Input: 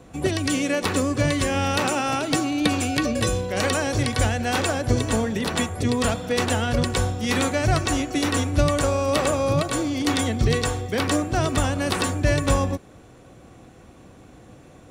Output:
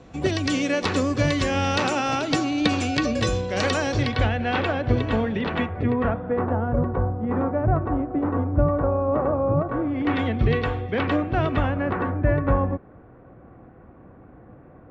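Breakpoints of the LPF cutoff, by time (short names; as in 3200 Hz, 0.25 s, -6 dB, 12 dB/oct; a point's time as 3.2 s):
LPF 24 dB/oct
3.84 s 6100 Hz
4.3 s 3300 Hz
5.38 s 3300 Hz
6.54 s 1200 Hz
9.61 s 1200 Hz
10.22 s 2900 Hz
11.53 s 2900 Hz
11.98 s 1700 Hz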